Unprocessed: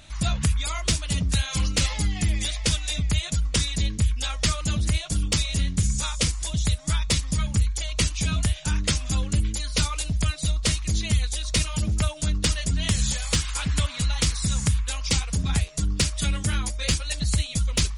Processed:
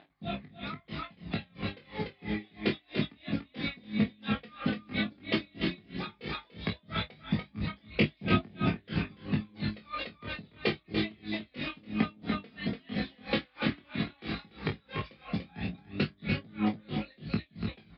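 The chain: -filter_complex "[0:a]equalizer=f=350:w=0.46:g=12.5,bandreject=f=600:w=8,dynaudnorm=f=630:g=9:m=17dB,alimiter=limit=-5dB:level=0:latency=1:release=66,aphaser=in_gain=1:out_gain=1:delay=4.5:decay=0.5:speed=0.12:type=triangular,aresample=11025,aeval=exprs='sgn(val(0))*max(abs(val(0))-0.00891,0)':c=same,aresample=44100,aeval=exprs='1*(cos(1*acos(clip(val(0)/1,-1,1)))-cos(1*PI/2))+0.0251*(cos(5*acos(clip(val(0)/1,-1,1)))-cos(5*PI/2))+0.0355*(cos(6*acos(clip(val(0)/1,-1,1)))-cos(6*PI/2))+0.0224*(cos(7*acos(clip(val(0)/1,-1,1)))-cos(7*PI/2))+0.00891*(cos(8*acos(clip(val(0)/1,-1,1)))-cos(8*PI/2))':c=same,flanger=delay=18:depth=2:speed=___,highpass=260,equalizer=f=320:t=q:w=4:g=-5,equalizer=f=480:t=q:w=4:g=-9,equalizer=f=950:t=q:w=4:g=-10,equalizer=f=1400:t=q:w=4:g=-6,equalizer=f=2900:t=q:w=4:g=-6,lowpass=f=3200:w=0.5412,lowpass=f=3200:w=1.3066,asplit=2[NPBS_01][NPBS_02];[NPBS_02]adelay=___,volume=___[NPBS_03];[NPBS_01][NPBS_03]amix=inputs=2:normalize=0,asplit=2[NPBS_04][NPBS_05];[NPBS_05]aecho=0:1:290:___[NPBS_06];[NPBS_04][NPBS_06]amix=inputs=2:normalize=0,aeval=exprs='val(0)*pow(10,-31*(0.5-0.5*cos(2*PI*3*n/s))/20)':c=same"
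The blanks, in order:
0.91, 28, -4.5dB, 0.631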